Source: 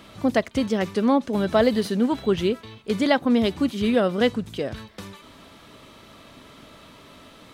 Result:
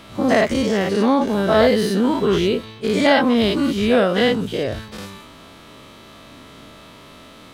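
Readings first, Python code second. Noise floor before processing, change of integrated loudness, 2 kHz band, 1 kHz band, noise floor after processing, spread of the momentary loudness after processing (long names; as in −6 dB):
−49 dBFS, +5.0 dB, +7.5 dB, +6.0 dB, −43 dBFS, 10 LU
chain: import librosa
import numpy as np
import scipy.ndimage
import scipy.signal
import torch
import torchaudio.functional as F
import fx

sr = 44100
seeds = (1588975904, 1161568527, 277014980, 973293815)

y = fx.spec_dilate(x, sr, span_ms=120)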